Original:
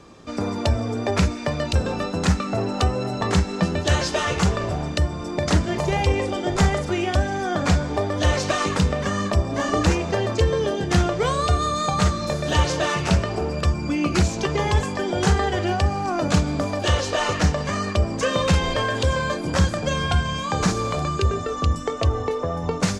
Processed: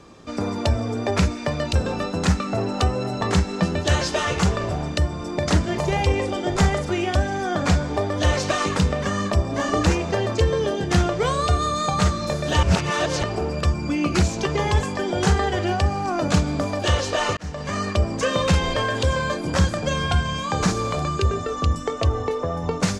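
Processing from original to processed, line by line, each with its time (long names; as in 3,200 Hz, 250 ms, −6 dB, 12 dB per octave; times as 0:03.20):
0:12.63–0:13.23: reverse
0:17.37–0:17.79: fade in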